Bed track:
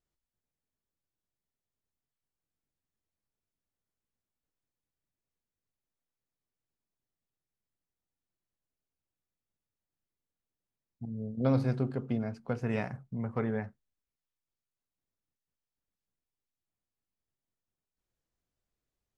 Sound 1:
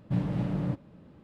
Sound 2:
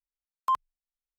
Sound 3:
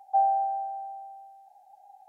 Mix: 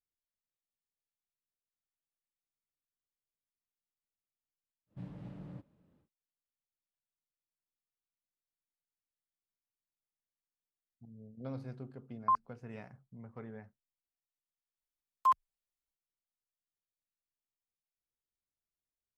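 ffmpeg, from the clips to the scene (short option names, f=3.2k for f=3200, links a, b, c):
-filter_complex "[2:a]asplit=2[a][b];[0:a]volume=-15dB[c];[a]lowpass=f=1.6k:w=0.5412,lowpass=f=1.6k:w=1.3066[d];[b]asplit=2[e][f];[f]adelay=4.8,afreqshift=-2.6[g];[e][g]amix=inputs=2:normalize=1[h];[1:a]atrim=end=1.23,asetpts=PTS-STARTPTS,volume=-17.5dB,afade=t=in:d=0.1,afade=t=out:st=1.13:d=0.1,adelay=4860[i];[d]atrim=end=1.18,asetpts=PTS-STARTPTS,volume=-3dB,afade=t=in:d=0.004:c=hsin,afade=t=out:st=1.176:d=0.004:c=hsin,adelay=11800[j];[h]atrim=end=1.18,asetpts=PTS-STARTPTS,volume=-0.5dB,afade=t=in:d=0.004:c=hsin,afade=t=out:st=1.176:d=0.004:c=hsin,adelay=14770[k];[c][i][j][k]amix=inputs=4:normalize=0"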